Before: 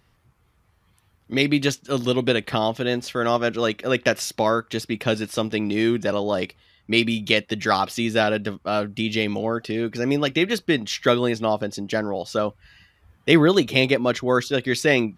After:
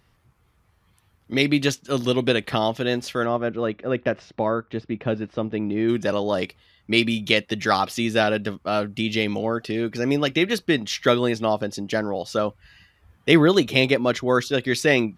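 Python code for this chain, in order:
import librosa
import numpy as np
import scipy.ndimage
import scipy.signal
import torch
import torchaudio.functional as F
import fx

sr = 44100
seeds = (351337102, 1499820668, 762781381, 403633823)

y = fx.spacing_loss(x, sr, db_at_10k=40, at=(3.24, 5.88), fade=0.02)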